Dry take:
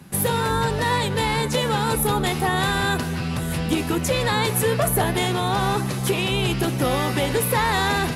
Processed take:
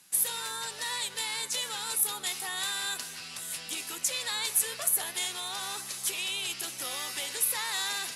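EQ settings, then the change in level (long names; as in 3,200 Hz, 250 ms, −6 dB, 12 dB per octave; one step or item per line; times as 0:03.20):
resonant band-pass 7,900 Hz, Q 0.92
+1.5 dB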